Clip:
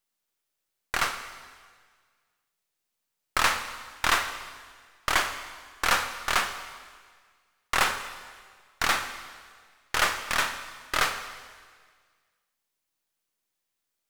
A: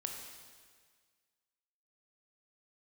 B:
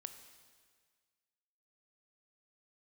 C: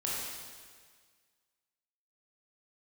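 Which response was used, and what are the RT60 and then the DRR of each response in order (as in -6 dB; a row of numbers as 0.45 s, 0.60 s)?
B; 1.7 s, 1.7 s, 1.7 s; 2.0 dB, 8.5 dB, -6.0 dB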